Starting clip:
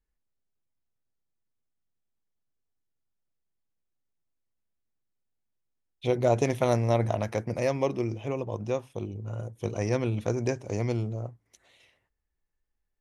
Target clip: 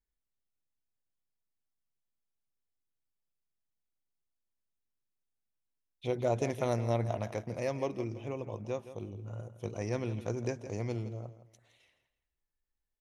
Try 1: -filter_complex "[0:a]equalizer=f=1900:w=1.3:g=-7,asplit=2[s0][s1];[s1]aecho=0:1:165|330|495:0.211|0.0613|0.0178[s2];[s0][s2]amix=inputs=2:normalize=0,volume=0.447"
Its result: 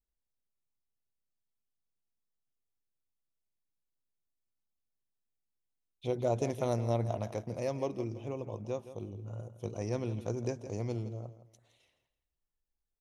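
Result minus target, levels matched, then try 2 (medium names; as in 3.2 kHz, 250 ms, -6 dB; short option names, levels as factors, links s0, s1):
2 kHz band -5.0 dB
-filter_complex "[0:a]asplit=2[s0][s1];[s1]aecho=0:1:165|330|495:0.211|0.0613|0.0178[s2];[s0][s2]amix=inputs=2:normalize=0,volume=0.447"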